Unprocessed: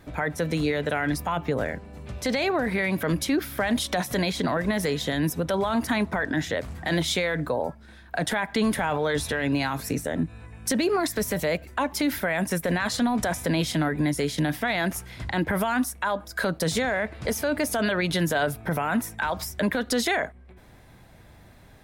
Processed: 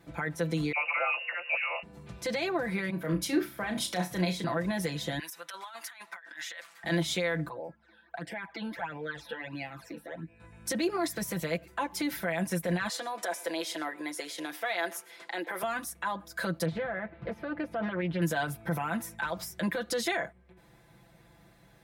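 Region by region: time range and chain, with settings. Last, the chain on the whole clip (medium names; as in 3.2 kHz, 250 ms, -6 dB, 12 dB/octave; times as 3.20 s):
0.72–1.83 s: frequency inversion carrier 2.8 kHz + resonant high-pass 570 Hz, resonance Q 6.6 + phase dispersion lows, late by 58 ms, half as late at 1.3 kHz
2.90–4.44 s: flutter echo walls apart 5.7 m, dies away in 0.24 s + three bands expanded up and down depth 100%
5.19–6.84 s: Chebyshev high-pass 1.5 kHz + compressor with a negative ratio -36 dBFS, ratio -0.5
7.49–10.40 s: tone controls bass -11 dB, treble -12 dB + phase shifter stages 12, 1.5 Hz, lowest notch 110–1300 Hz
12.89–15.63 s: high-pass 370 Hz 24 dB/octave + delay 113 ms -22.5 dB
16.65–18.22 s: distance through air 490 m + loudspeaker Doppler distortion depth 0.24 ms
whole clip: high-pass 52 Hz; comb 5.9 ms, depth 86%; trim -8.5 dB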